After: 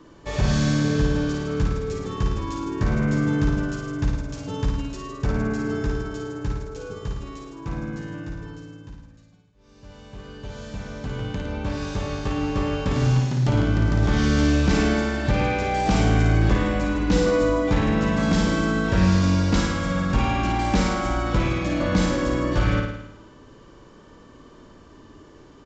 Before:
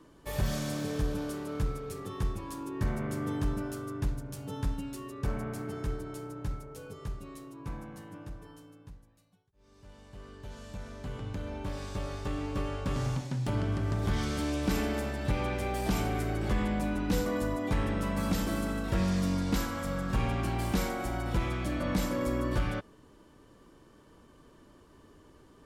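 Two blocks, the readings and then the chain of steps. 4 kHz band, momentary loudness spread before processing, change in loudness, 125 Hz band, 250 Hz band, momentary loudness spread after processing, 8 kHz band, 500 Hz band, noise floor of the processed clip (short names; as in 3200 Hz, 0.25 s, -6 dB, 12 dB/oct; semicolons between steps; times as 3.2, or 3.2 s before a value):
+9.5 dB, 13 LU, +10.0 dB, +10.5 dB, +10.0 dB, 14 LU, +7.0 dB, +9.5 dB, -49 dBFS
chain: flutter echo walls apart 9.4 m, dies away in 0.8 s; downsampling 16000 Hz; gain +7.5 dB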